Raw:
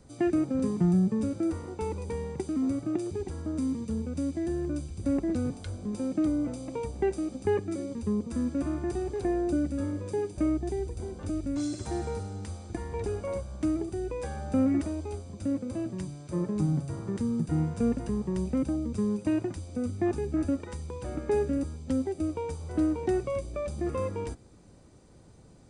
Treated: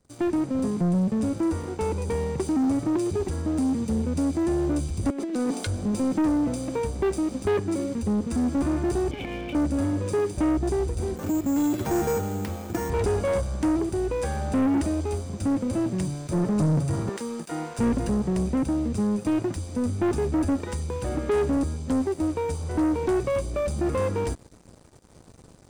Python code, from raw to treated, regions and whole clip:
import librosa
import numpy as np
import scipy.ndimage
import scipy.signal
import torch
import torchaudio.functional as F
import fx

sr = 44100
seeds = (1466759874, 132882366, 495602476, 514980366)

y = fx.chain(x, sr, fx.highpass(hz=240.0, slope=24),
    fx.over_compress(threshold_db=-34.0, ratio=-0.5), at=(5.1, 5.67))
y = fx.chain(y, sr, fx.transient(attack_db=-10, sustain_db=0),
    fx.formant_cascade(vowel='i'),
    fx.spectral_comp(ratio=4.0), at=(9.11, 9.55))
y = fx.chain(y, sr, fx.highpass(hz=130.0, slope=12),
    fx.resample_bad(factor=6, down='filtered', up='hold'), at=(11.16, 12.9))
y = fx.chain(y, sr, fx.highpass(hz=560.0, slope=12),
    fx.high_shelf(hz=8100.0, db=-3.5), at=(17.09, 17.79))
y = fx.high_shelf(y, sr, hz=8900.0, db=4.5)
y = fx.rider(y, sr, range_db=10, speed_s=2.0)
y = fx.leveller(y, sr, passes=3)
y = y * 10.0 ** (-4.0 / 20.0)